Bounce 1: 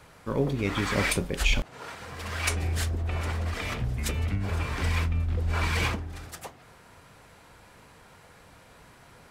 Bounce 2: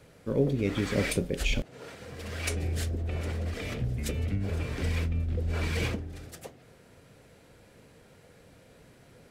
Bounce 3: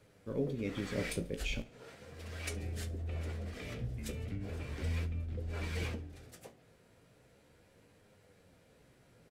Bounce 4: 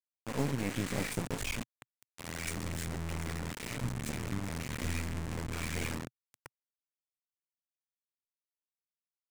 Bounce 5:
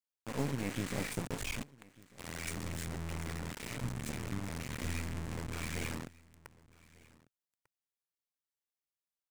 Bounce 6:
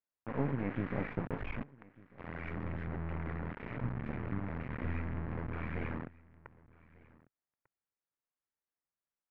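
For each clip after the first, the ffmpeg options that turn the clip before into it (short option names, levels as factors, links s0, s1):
-af "equalizer=f=125:t=o:w=1:g=4,equalizer=f=250:t=o:w=1:g=4,equalizer=f=500:t=o:w=1:g=7,equalizer=f=1000:t=o:w=1:g=-9,volume=0.596"
-af "flanger=delay=9.6:depth=8.7:regen=46:speed=0.37:shape=sinusoidal,aecho=1:1:69|138|207:0.0794|0.0389|0.0191,volume=0.596"
-af "acrusher=bits=4:dc=4:mix=0:aa=0.000001,equalizer=f=125:t=o:w=1:g=8,equalizer=f=250:t=o:w=1:g=6,equalizer=f=1000:t=o:w=1:g=4,equalizer=f=2000:t=o:w=1:g=6,equalizer=f=8000:t=o:w=1:g=7"
-af "aecho=1:1:1196:0.0708,volume=0.75"
-af "lowpass=f=2000:w=0.5412,lowpass=f=2000:w=1.3066,volume=1.19"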